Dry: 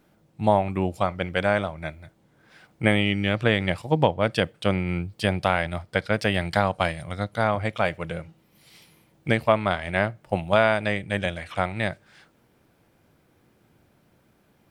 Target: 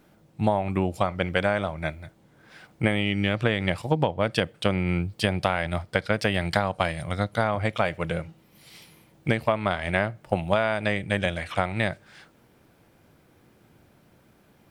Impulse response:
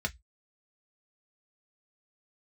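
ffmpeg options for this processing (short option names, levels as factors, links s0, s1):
-af "acompressor=threshold=0.0794:ratio=6,volume=1.5"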